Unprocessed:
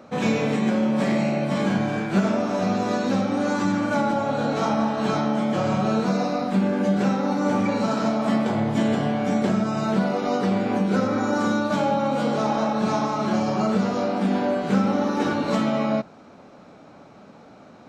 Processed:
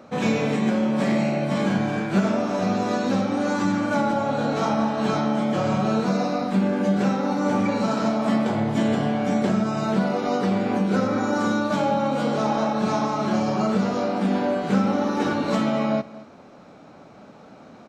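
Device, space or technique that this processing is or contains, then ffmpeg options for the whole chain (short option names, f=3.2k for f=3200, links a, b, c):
ducked delay: -filter_complex "[0:a]asplit=3[a][b][c];[b]adelay=226,volume=-5dB[d];[c]apad=whole_len=798672[e];[d][e]sidechaincompress=threshold=-33dB:ratio=8:attack=16:release=1460[f];[a][f]amix=inputs=2:normalize=0"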